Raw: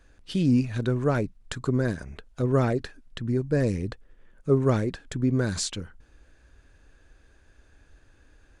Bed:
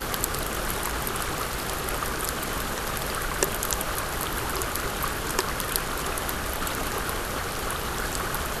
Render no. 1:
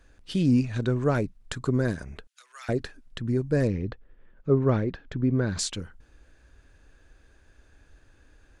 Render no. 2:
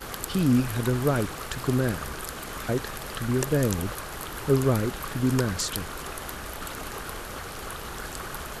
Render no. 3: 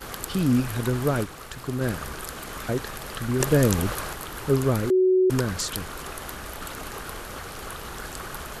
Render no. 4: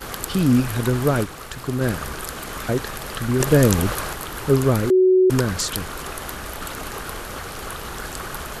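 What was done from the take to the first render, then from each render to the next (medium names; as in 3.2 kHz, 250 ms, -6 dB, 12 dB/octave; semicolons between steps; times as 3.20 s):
0.62–1.13 s: steep low-pass 8.9 kHz 48 dB/octave; 2.27–2.69 s: Bessel high-pass 2.4 kHz, order 4; 3.67–5.59 s: distance through air 220 m
add bed -7 dB
1.24–1.81 s: gain -5 dB; 3.40–4.13 s: gain +4.5 dB; 4.90–5.30 s: bleep 372 Hz -15.5 dBFS
trim +4.5 dB; peak limiter -2 dBFS, peak gain reduction 3 dB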